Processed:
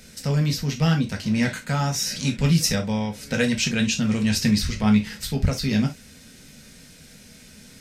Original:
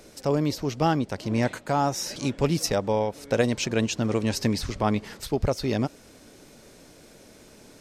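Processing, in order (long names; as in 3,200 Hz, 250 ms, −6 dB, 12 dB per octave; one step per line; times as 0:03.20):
flat-topped bell 580 Hz −11.5 dB 2.4 octaves
reverb whose tail is shaped and stops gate 90 ms falling, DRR 1.5 dB
level +4 dB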